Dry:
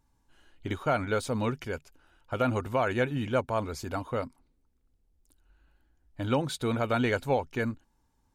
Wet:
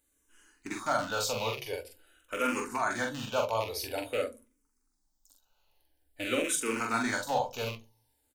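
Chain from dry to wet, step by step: rattling part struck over -34 dBFS, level -26 dBFS; tone controls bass -13 dB, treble +12 dB; doubler 44 ms -4 dB; de-hum 76.5 Hz, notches 4; on a send at -7 dB: reverb RT60 0.25 s, pre-delay 3 ms; on the sum: endless phaser -0.48 Hz

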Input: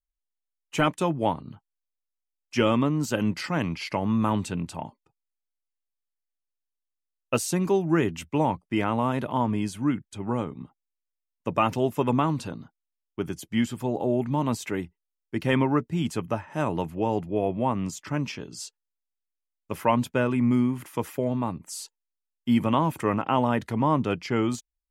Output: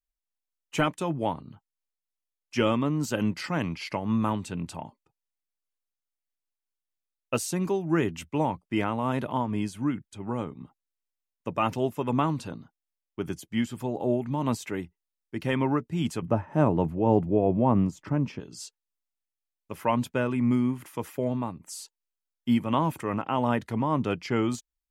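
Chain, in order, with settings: 16.22–18.4 tilt shelf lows +8.5 dB, about 1400 Hz; noise-modulated level, depth 60%

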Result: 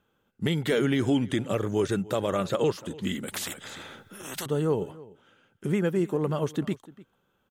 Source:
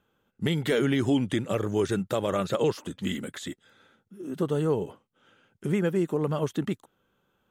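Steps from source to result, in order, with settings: outdoor echo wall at 51 m, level -20 dB; 3.28–4.46 spectral compressor 4:1

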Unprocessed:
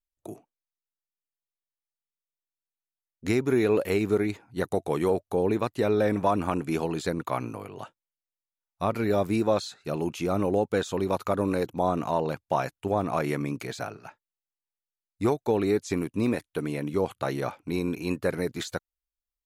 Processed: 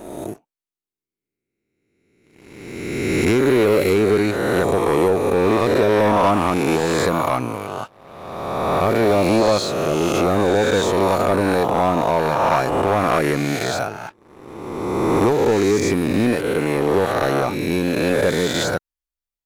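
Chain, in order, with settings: spectral swells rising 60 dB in 1.89 s; sample leveller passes 2

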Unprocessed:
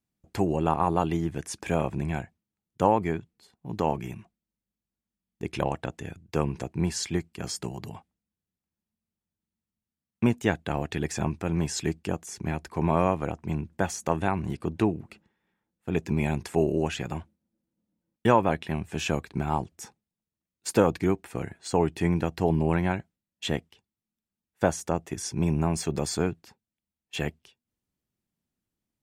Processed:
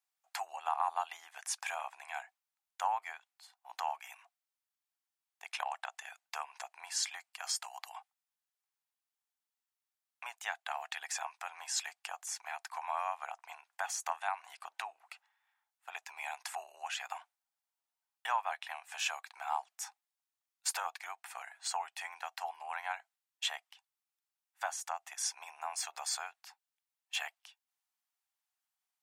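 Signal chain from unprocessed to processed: compressor 2:1, threshold -31 dBFS, peak gain reduction 9.5 dB; Chebyshev high-pass 740 Hz, order 5; gain +1 dB

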